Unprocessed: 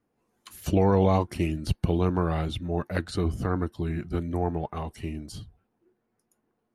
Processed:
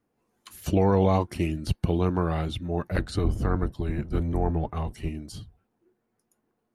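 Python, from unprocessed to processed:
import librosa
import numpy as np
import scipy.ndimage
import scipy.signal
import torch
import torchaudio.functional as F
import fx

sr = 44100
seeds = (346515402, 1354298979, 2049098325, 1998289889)

y = fx.octave_divider(x, sr, octaves=1, level_db=1.0, at=(2.83, 5.09))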